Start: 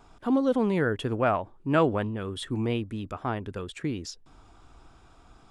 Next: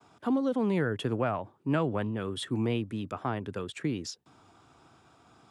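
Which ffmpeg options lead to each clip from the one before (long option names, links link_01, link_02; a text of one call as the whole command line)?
ffmpeg -i in.wav -filter_complex "[0:a]highpass=frequency=100:width=0.5412,highpass=frequency=100:width=1.3066,agate=range=-33dB:threshold=-56dB:ratio=3:detection=peak,acrossover=split=180[link_01][link_02];[link_02]acompressor=threshold=-26dB:ratio=6[link_03];[link_01][link_03]amix=inputs=2:normalize=0" out.wav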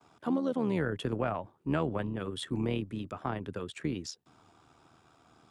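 ffmpeg -i in.wav -af "tremolo=f=79:d=0.571" out.wav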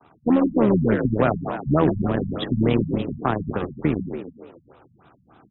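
ffmpeg -i in.wav -filter_complex "[0:a]asplit=2[link_01][link_02];[link_02]acrusher=bits=4:mix=0:aa=0.5,volume=-5dB[link_03];[link_01][link_03]amix=inputs=2:normalize=0,asplit=7[link_04][link_05][link_06][link_07][link_08][link_09][link_10];[link_05]adelay=142,afreqshift=38,volume=-6dB[link_11];[link_06]adelay=284,afreqshift=76,volume=-11.8dB[link_12];[link_07]adelay=426,afreqshift=114,volume=-17.7dB[link_13];[link_08]adelay=568,afreqshift=152,volume=-23.5dB[link_14];[link_09]adelay=710,afreqshift=190,volume=-29.4dB[link_15];[link_10]adelay=852,afreqshift=228,volume=-35.2dB[link_16];[link_04][link_11][link_12][link_13][link_14][link_15][link_16]amix=inputs=7:normalize=0,afftfilt=real='re*lt(b*sr/1024,210*pow(4000/210,0.5+0.5*sin(2*PI*3.4*pts/sr)))':imag='im*lt(b*sr/1024,210*pow(4000/210,0.5+0.5*sin(2*PI*3.4*pts/sr)))':win_size=1024:overlap=0.75,volume=8dB" out.wav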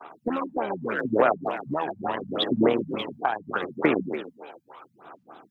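ffmpeg -i in.wav -af "highpass=540,acompressor=threshold=-31dB:ratio=6,aphaser=in_gain=1:out_gain=1:delay=1.3:decay=0.6:speed=0.77:type=sinusoidal,volume=7dB" out.wav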